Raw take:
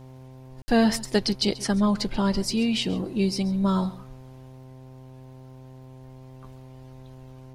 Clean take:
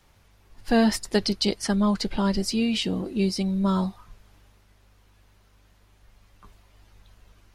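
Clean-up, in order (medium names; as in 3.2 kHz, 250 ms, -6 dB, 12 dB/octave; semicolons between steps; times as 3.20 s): de-click; de-hum 130 Hz, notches 8; room tone fill 0.62–0.68 s; inverse comb 135 ms -18.5 dB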